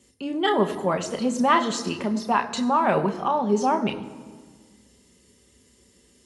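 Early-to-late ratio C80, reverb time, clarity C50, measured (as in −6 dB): 13.5 dB, 1.6 s, 12.5 dB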